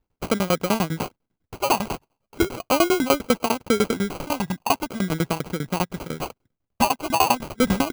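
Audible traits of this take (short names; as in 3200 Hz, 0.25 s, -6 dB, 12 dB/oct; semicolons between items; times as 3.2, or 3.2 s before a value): tremolo saw down 10 Hz, depth 100%; phasing stages 6, 0.39 Hz, lowest notch 440–2600 Hz; aliases and images of a low sample rate 1800 Hz, jitter 0%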